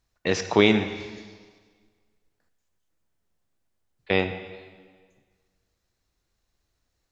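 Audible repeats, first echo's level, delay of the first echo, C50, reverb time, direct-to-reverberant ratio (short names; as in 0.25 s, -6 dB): none, none, none, 9.5 dB, 1.6 s, 8.0 dB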